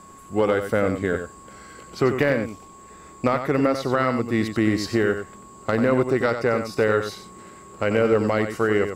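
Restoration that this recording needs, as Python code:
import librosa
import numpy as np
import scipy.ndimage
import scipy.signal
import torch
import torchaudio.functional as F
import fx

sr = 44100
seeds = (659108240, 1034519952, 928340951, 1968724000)

y = fx.fix_declip(x, sr, threshold_db=-8.5)
y = fx.notch(y, sr, hz=1100.0, q=30.0)
y = fx.fix_echo_inverse(y, sr, delay_ms=92, level_db=-8.5)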